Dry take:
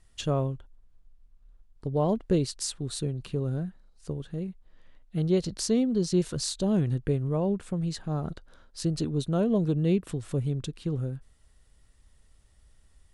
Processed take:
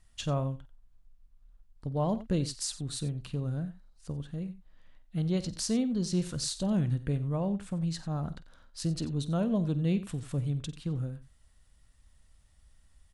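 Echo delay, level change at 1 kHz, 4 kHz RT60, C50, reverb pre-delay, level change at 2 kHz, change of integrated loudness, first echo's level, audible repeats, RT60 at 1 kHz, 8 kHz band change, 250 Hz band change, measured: 49 ms, −2.5 dB, no reverb audible, no reverb audible, no reverb audible, −2.0 dB, −3.5 dB, −16.5 dB, 2, no reverb audible, −2.0 dB, −3.5 dB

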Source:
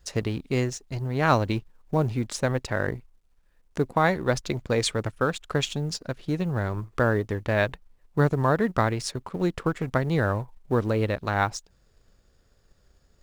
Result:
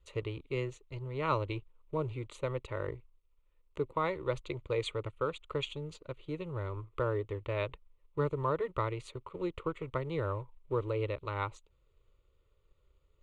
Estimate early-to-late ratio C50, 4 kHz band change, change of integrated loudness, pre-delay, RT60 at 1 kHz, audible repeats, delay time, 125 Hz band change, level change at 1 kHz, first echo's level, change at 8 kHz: no reverb audible, −11.0 dB, −10.0 dB, no reverb audible, no reverb audible, no echo audible, no echo audible, −11.0 dB, −9.5 dB, no echo audible, below −20 dB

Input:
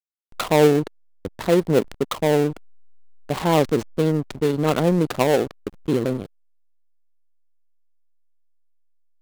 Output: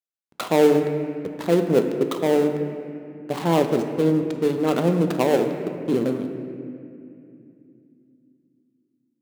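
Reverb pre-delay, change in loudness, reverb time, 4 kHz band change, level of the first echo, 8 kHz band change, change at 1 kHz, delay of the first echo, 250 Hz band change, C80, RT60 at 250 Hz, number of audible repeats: 5 ms, −1.0 dB, 2.6 s, −3.5 dB, no echo audible, −4.0 dB, −2.0 dB, no echo audible, +1.0 dB, 8.0 dB, 4.1 s, no echo audible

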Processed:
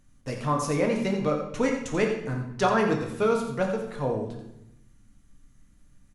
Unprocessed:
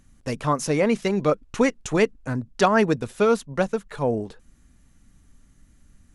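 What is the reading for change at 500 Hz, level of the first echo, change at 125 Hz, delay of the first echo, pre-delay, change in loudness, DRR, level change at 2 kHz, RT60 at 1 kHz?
−3.5 dB, −9.0 dB, −2.0 dB, 87 ms, 7 ms, −3.5 dB, 0.5 dB, −4.0 dB, 0.80 s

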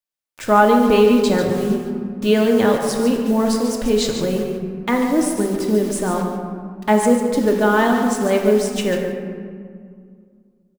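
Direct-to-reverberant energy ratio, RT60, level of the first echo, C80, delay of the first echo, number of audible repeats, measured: 0.5 dB, 2.2 s, −9.0 dB, 4.0 dB, 144 ms, 1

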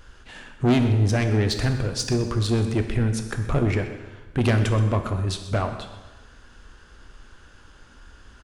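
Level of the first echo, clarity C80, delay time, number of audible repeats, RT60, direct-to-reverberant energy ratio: −16.5 dB, 9.0 dB, 127 ms, 1, 1.2 s, 6.0 dB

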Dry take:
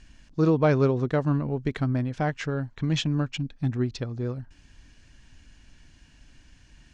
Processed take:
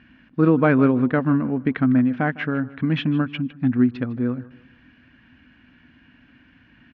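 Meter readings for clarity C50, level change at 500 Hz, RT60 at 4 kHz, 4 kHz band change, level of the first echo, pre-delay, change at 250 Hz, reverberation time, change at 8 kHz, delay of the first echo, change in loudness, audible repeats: no reverb audible, +2.0 dB, no reverb audible, −1.5 dB, −19.0 dB, no reverb audible, +9.0 dB, no reverb audible, can't be measured, 155 ms, +5.5 dB, 2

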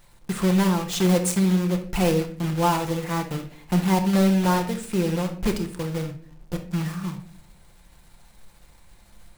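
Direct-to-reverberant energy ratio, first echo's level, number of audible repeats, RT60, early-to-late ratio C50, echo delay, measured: 4.5 dB, no echo audible, no echo audible, 0.45 s, 9.5 dB, no echo audible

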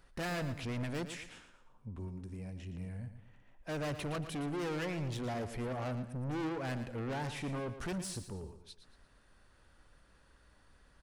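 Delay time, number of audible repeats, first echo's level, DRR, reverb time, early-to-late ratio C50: 115 ms, 3, −11.0 dB, no reverb audible, no reverb audible, no reverb audible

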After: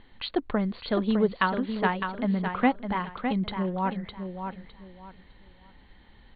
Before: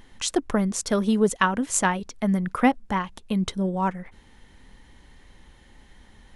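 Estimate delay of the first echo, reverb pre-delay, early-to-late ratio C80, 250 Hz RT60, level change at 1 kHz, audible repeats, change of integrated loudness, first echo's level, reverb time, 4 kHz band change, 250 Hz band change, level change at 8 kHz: 608 ms, no reverb audible, no reverb audible, no reverb audible, −2.5 dB, 3, −4.0 dB, −7.0 dB, no reverb audible, −3.5 dB, −3.0 dB, below −40 dB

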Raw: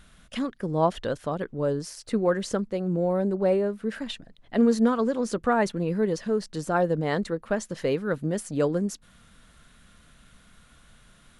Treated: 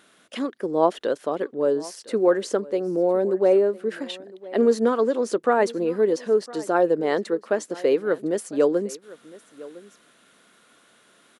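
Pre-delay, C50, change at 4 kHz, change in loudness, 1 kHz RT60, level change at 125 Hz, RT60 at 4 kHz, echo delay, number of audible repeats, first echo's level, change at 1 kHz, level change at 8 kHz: no reverb audible, no reverb audible, +1.0 dB, +3.5 dB, no reverb audible, −9.5 dB, no reverb audible, 1,008 ms, 1, −20.0 dB, +2.5 dB, +1.0 dB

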